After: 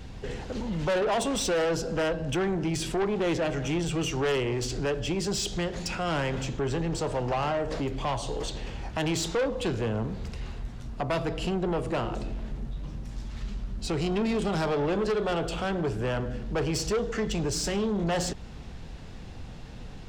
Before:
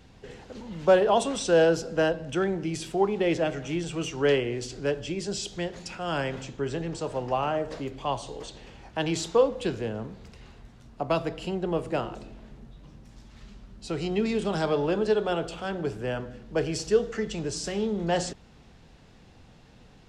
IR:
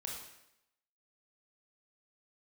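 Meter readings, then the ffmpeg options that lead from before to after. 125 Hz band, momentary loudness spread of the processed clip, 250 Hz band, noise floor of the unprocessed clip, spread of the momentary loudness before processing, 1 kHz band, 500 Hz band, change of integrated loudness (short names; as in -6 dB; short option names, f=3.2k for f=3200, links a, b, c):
+3.5 dB, 12 LU, +0.5 dB, -53 dBFS, 14 LU, -1.0 dB, -3.0 dB, -1.5 dB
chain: -filter_complex "[0:a]lowshelf=f=90:g=9.5,asplit=2[a][b];[b]acompressor=threshold=-33dB:ratio=6,volume=3dB[c];[a][c]amix=inputs=2:normalize=0,asoftclip=type=tanh:threshold=-23dB"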